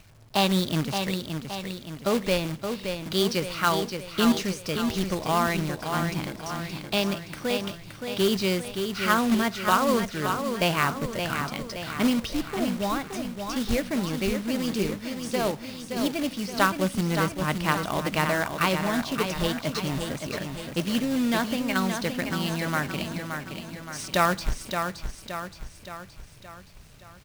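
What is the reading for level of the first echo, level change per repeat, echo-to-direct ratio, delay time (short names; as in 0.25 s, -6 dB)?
-6.5 dB, -5.5 dB, -5.0 dB, 0.571 s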